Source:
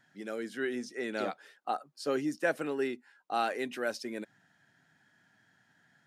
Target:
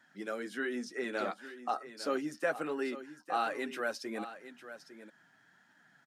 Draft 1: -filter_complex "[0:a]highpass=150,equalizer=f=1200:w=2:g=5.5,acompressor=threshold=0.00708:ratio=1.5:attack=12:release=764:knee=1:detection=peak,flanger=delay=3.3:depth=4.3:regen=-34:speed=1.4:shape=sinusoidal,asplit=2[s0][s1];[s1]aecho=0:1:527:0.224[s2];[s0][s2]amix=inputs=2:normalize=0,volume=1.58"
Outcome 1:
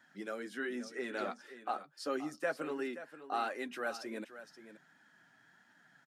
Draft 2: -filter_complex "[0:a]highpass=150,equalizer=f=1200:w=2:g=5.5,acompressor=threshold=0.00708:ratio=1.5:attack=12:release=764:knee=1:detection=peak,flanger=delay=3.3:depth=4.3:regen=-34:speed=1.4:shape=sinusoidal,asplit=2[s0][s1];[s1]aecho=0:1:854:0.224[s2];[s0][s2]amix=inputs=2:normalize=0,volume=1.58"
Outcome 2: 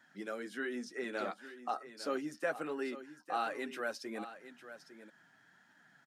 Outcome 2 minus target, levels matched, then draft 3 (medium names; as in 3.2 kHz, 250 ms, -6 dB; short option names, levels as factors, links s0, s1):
compression: peak gain reduction +3 dB
-filter_complex "[0:a]highpass=150,equalizer=f=1200:w=2:g=5.5,acompressor=threshold=0.02:ratio=1.5:attack=12:release=764:knee=1:detection=peak,flanger=delay=3.3:depth=4.3:regen=-34:speed=1.4:shape=sinusoidal,asplit=2[s0][s1];[s1]aecho=0:1:854:0.224[s2];[s0][s2]amix=inputs=2:normalize=0,volume=1.58"